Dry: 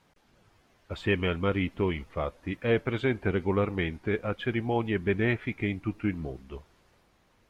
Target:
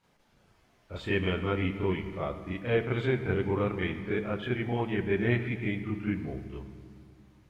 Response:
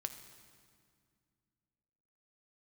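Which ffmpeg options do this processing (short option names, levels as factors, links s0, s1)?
-filter_complex "[0:a]asplit=2[s0][s1];[1:a]atrim=start_sample=2205,adelay=33[s2];[s1][s2]afir=irnorm=-1:irlink=0,volume=2.37[s3];[s0][s3]amix=inputs=2:normalize=0,volume=0.376"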